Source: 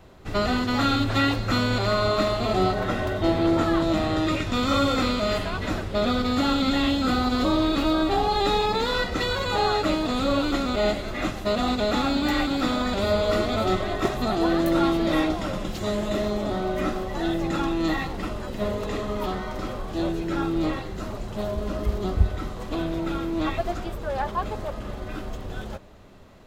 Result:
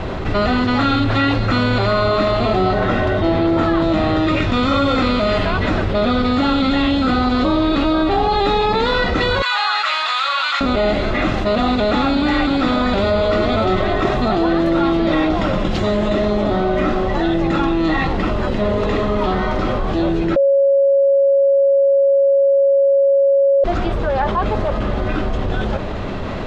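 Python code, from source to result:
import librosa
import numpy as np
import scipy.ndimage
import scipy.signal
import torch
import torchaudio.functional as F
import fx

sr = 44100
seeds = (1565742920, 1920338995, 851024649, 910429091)

y = fx.highpass(x, sr, hz=1100.0, slope=24, at=(9.42, 10.61))
y = fx.edit(y, sr, fx.bleep(start_s=20.36, length_s=3.28, hz=553.0, db=-10.0), tone=tone)
y = scipy.signal.sosfilt(scipy.signal.butter(2, 3700.0, 'lowpass', fs=sr, output='sos'), y)
y = fx.env_flatten(y, sr, amount_pct=70)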